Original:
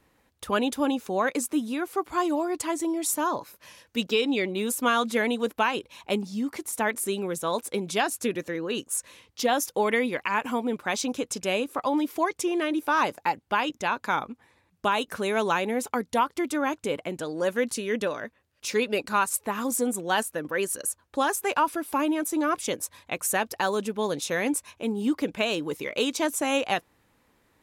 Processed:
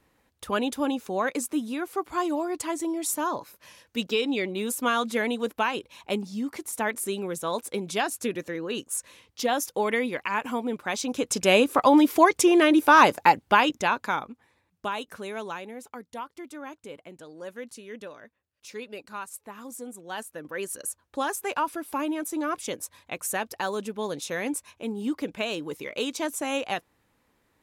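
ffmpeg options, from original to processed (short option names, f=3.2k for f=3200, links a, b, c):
-af "volume=17.5dB,afade=t=in:st=11.06:d=0.51:silence=0.334965,afade=t=out:st=13.32:d=0.89:silence=0.281838,afade=t=out:st=14.21:d=1.54:silence=0.316228,afade=t=in:st=20:d=0.89:silence=0.334965"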